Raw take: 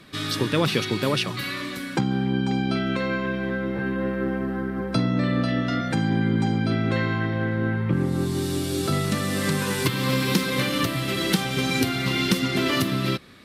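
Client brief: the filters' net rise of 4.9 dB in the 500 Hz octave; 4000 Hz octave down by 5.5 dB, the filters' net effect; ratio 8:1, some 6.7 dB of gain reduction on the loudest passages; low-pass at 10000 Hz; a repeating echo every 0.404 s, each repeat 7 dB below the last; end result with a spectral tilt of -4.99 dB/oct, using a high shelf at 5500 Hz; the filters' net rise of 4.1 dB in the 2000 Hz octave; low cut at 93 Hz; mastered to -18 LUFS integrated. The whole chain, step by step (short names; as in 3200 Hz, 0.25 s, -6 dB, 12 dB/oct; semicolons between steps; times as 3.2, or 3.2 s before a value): HPF 93 Hz; LPF 10000 Hz; bell 500 Hz +6 dB; bell 2000 Hz +7.5 dB; bell 4000 Hz -8 dB; high shelf 5500 Hz -6 dB; compressor 8:1, threshold -22 dBFS; feedback echo 0.404 s, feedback 45%, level -7 dB; gain +7.5 dB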